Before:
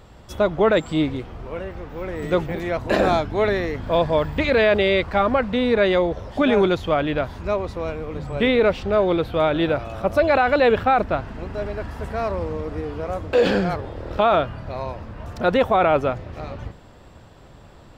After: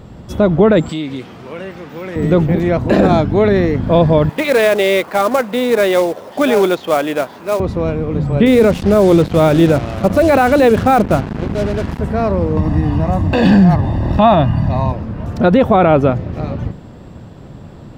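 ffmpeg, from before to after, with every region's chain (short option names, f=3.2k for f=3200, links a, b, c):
-filter_complex "[0:a]asettb=1/sr,asplit=3[a][b][c];[a]atrim=end=0.894[d];[b]atrim=start=0.89:end=2.16,asetpts=PTS-STARTPTS,afade=t=in:d=0.004:c=qsin,afade=t=out:st=1.266:d=0.004:c=qsin,highpass=150,acompressor=threshold=-27dB:ratio=3:attack=3.2:release=140:knee=1:detection=peak,tiltshelf=f=1.2k:g=-7.5[e];[c]atrim=start=2.156[f];[d][e]acrossfade=d=0.004:c1=hsin:c2=qsin[g];[g][f]acrossfade=d=0.004:c1=qsin:c2=hsin,asettb=1/sr,asplit=3[h][i][j];[h]atrim=end=4.294[k];[i]atrim=start=4.29:end=7.6,asetpts=PTS-STARTPTS,afade=t=in:d=0.004:c=qsin,afade=t=out:st=3.306:d=0.004:c=qsin,highpass=490,lowpass=6.5k,acrusher=bits=3:mode=log:mix=0:aa=0.000001[l];[j]atrim=start=7.596[m];[k][l]acrossfade=d=0.004:c1=hsin:c2=qsin[n];[n][m]acrossfade=d=0.004:c1=qsin:c2=hsin,asettb=1/sr,asplit=3[o][p][q];[o]atrim=end=8.464[r];[p]atrim=start=8.46:end=11.99,asetpts=PTS-STARTPTS,afade=t=in:d=0.004:c=qsin,afade=t=out:st=3.526:d=0.004:c=qsin,bandreject=f=60:t=h:w=6,bandreject=f=120:t=h:w=6,bandreject=f=180:t=h:w=6,bandreject=f=240:t=h:w=6,bandreject=f=300:t=h:w=6,acrusher=bits=4:mix=0:aa=0.5[s];[q]atrim=start=11.986[t];[r][s]acrossfade=d=0.004:c1=hsin:c2=qsin[u];[u][t]acrossfade=d=0.004:c1=qsin:c2=hsin,asettb=1/sr,asplit=3[v][w][x];[v]atrim=end=12.574[y];[w]atrim=start=12.57:end=14.92,asetpts=PTS-STARTPTS,afade=t=in:d=0.004:c=qsin,afade=t=out:st=2.346:d=0.004:c=qsin,aecho=1:1:1.1:0.78,atrim=end_sample=103635,acompressor=mode=upward:threshold=-20dB:ratio=2.5:attack=3.2:release=140:knee=2.83:detection=peak[z];[x]atrim=start=14.916[aa];[y][z]acrossfade=d=0.004:c1=hsin:c2=qsin[ab];[ab][aa]acrossfade=d=0.004:c1=qsin:c2=hsin,equalizer=f=180:t=o:w=2.5:g=13,alimiter=level_in=4.5dB:limit=-1dB:release=50:level=0:latency=1,volume=-1dB"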